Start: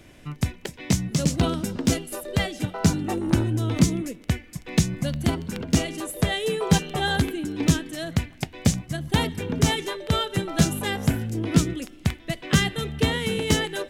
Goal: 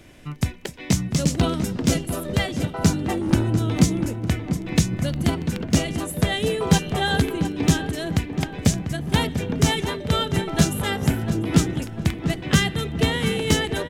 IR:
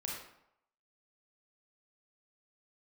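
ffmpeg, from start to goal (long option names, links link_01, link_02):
-filter_complex "[0:a]asplit=2[link_01][link_02];[link_02]adelay=695,lowpass=frequency=1700:poles=1,volume=-8dB,asplit=2[link_03][link_04];[link_04]adelay=695,lowpass=frequency=1700:poles=1,volume=0.51,asplit=2[link_05][link_06];[link_06]adelay=695,lowpass=frequency=1700:poles=1,volume=0.51,asplit=2[link_07][link_08];[link_08]adelay=695,lowpass=frequency=1700:poles=1,volume=0.51,asplit=2[link_09][link_10];[link_10]adelay=695,lowpass=frequency=1700:poles=1,volume=0.51,asplit=2[link_11][link_12];[link_12]adelay=695,lowpass=frequency=1700:poles=1,volume=0.51[link_13];[link_01][link_03][link_05][link_07][link_09][link_11][link_13]amix=inputs=7:normalize=0,volume=1.5dB"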